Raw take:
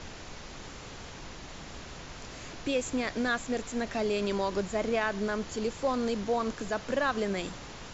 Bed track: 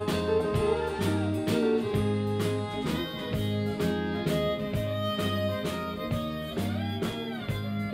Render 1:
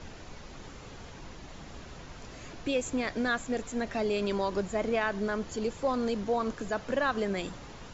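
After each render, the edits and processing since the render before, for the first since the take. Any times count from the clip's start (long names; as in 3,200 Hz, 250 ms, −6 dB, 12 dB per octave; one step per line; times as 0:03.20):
broadband denoise 6 dB, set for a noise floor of −45 dBFS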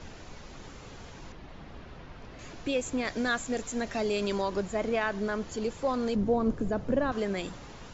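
0:01.32–0:02.39: high-frequency loss of the air 190 metres
0:03.05–0:04.42: high-shelf EQ 6,700 Hz +11 dB
0:06.15–0:07.12: tilt shelving filter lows +9.5 dB, about 660 Hz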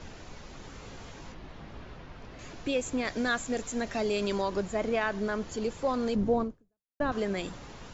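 0:00.70–0:01.95: double-tracking delay 19 ms −6 dB
0:06.42–0:07.00: fade out exponential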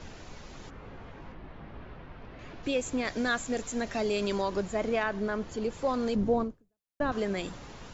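0:00.69–0:02.62: low-pass filter 1,900 Hz → 3,300 Hz
0:05.03–0:05.73: high-shelf EQ 4,300 Hz −7.5 dB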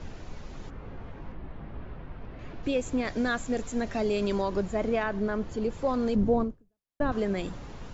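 spectral tilt −1.5 dB per octave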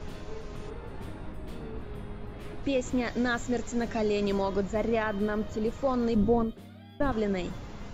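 mix in bed track −18 dB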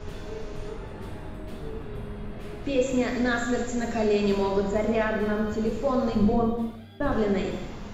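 reverb whose tail is shaped and stops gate 380 ms falling, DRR −0.5 dB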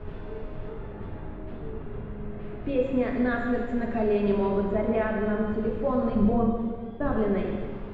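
high-frequency loss of the air 490 metres
echo with a time of its own for lows and highs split 510 Hz, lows 217 ms, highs 147 ms, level −10 dB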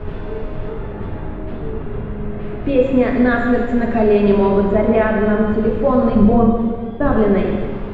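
level +11 dB
brickwall limiter −2 dBFS, peak gain reduction 1.5 dB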